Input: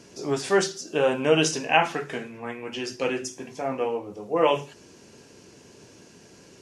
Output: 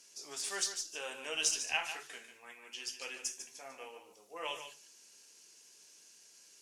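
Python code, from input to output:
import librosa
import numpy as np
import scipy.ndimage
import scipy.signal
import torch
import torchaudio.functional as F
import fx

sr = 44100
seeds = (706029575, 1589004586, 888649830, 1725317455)

y = np.diff(x, prepend=0.0)
y = fx.cheby_harmonics(y, sr, harmonics=(8,), levels_db=(-36,), full_scale_db=-15.5)
y = y + 10.0 ** (-9.5 / 20.0) * np.pad(y, (int(147 * sr / 1000.0), 0))[:len(y)]
y = F.gain(torch.from_numpy(y), -1.5).numpy()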